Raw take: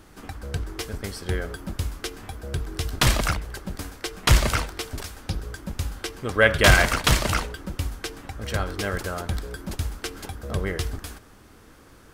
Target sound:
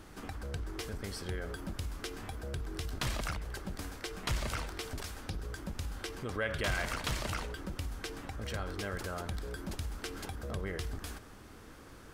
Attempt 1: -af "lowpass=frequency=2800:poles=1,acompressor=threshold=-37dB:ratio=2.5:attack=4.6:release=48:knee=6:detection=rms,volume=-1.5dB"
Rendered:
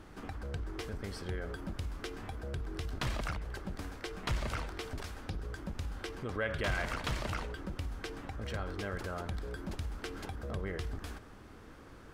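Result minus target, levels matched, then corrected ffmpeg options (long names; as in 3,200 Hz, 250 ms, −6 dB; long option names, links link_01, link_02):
8,000 Hz band −6.0 dB
-af "lowpass=frequency=11000:poles=1,acompressor=threshold=-37dB:ratio=2.5:attack=4.6:release=48:knee=6:detection=rms,volume=-1.5dB"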